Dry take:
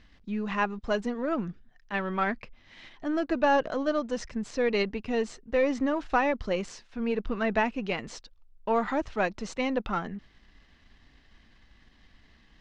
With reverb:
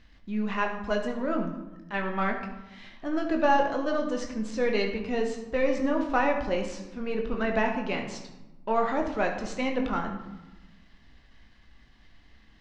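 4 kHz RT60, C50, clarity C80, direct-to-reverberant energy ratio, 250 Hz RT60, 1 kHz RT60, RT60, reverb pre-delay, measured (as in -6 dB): 0.60 s, 6.5 dB, 9.0 dB, 2.0 dB, 1.7 s, 1.1 s, 1.1 s, 19 ms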